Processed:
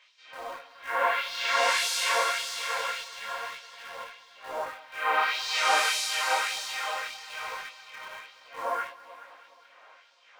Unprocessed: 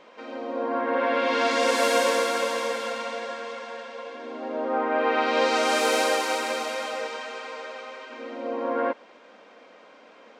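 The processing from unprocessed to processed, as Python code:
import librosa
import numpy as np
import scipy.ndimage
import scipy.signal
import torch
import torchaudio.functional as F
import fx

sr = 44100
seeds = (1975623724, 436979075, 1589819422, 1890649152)

p1 = fx.filter_lfo_highpass(x, sr, shape='sine', hz=1.7, low_hz=840.0, high_hz=4500.0, q=1.3)
p2 = fx.quant_dither(p1, sr, seeds[0], bits=6, dither='none')
p3 = p1 + (p2 * librosa.db_to_amplitude(-10.0))
p4 = fx.echo_heads(p3, sr, ms=212, heads='first and second', feedback_pct=47, wet_db=-20.0)
p5 = fx.detune_double(p4, sr, cents=37)
y = p5 * librosa.db_to_amplitude(1.5)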